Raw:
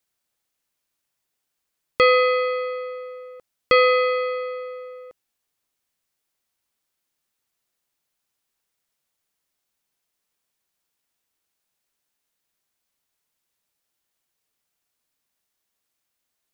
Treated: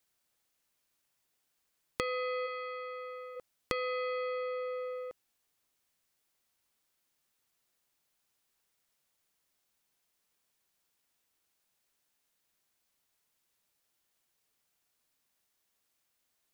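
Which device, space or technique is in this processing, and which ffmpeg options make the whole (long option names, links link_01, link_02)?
serial compression, leveller first: -filter_complex "[0:a]acompressor=threshold=-20dB:ratio=2.5,acompressor=threshold=-34dB:ratio=4,asplit=3[link_01][link_02][link_03];[link_01]afade=type=out:start_time=2.46:duration=0.02[link_04];[link_02]highpass=700,afade=type=in:start_time=2.46:duration=0.02,afade=type=out:start_time=3.35:duration=0.02[link_05];[link_03]afade=type=in:start_time=3.35:duration=0.02[link_06];[link_04][link_05][link_06]amix=inputs=3:normalize=0"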